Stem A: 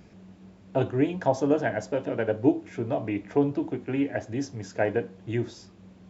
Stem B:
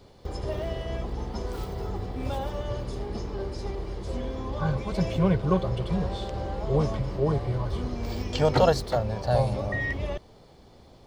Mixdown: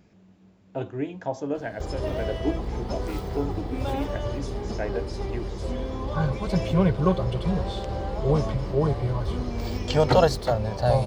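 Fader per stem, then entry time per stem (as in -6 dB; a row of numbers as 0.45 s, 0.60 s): -6.0 dB, +2.0 dB; 0.00 s, 1.55 s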